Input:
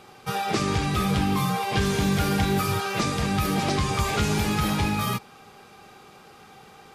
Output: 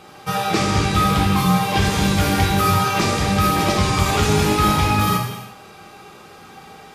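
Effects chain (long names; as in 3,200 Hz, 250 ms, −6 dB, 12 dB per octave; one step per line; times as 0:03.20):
reverb whose tail is shaped and stops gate 380 ms falling, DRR −1 dB
level +3.5 dB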